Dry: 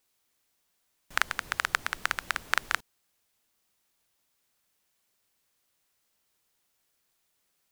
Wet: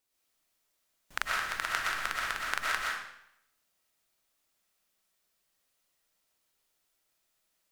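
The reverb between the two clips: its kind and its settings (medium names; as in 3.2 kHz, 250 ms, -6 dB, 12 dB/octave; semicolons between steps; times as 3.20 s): algorithmic reverb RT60 0.75 s, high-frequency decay 0.95×, pre-delay 80 ms, DRR -4 dB; trim -7 dB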